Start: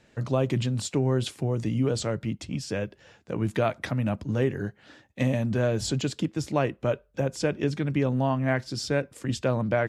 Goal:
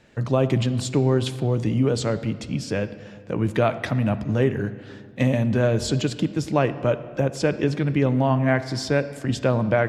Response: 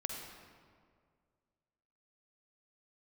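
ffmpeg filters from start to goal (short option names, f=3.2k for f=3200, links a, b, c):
-filter_complex "[0:a]asplit=2[a][b];[1:a]atrim=start_sample=2205,lowpass=5.2k[c];[b][c]afir=irnorm=-1:irlink=0,volume=-8dB[d];[a][d]amix=inputs=2:normalize=0,volume=2dB"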